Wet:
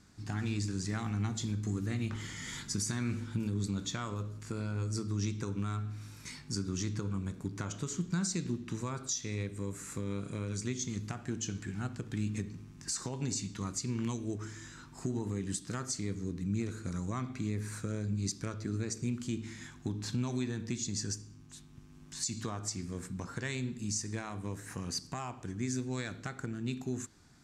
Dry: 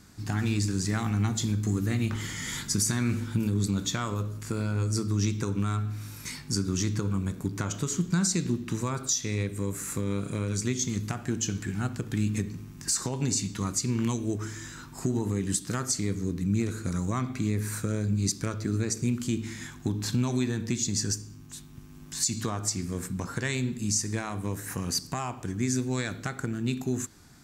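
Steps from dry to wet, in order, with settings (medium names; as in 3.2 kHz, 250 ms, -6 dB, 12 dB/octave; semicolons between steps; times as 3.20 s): low-pass 8.5 kHz 12 dB/octave; trim -7 dB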